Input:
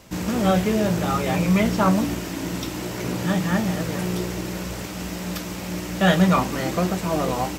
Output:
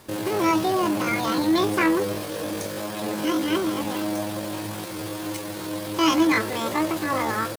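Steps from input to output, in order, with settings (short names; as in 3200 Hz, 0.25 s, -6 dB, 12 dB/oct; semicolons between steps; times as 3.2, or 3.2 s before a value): in parallel at -3 dB: soft clip -15 dBFS, distortion -15 dB; on the sum: pitch shift +9.5 st; gain -5.5 dB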